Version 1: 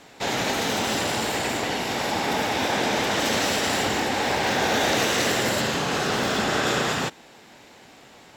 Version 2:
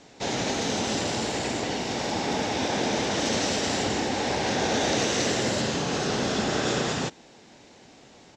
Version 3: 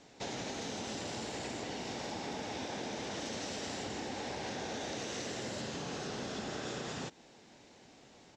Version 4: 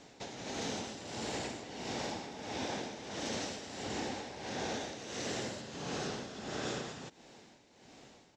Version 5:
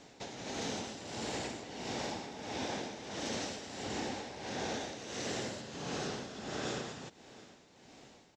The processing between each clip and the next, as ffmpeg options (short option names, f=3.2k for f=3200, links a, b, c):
-af "firequalizer=gain_entry='entry(290,0);entry(1200,-7);entry(3400,-4);entry(6200,1);entry(13000,-27)':delay=0.05:min_phase=1"
-af "acompressor=threshold=-30dB:ratio=6,volume=-7dB"
-af "tremolo=f=1.5:d=0.66,volume=3dB"
-af "aecho=1:1:725:0.0891"